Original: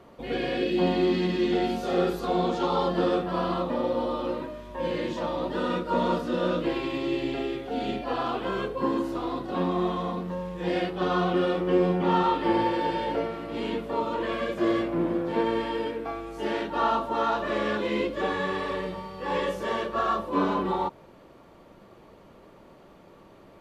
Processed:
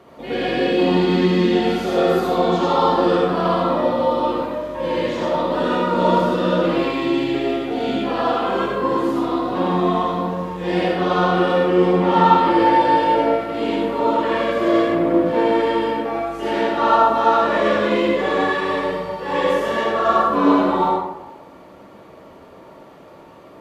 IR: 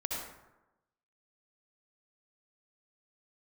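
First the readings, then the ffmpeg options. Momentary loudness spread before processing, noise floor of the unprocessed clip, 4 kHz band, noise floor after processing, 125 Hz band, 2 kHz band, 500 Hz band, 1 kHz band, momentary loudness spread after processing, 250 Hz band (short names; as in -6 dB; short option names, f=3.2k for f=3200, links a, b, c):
7 LU, -52 dBFS, +8.0 dB, -43 dBFS, +7.5 dB, +9.0 dB, +9.0 dB, +10.5 dB, 8 LU, +8.0 dB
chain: -filter_complex "[0:a]highpass=f=140:p=1[a];[1:a]atrim=start_sample=2205[b];[a][b]afir=irnorm=-1:irlink=0,volume=5.5dB"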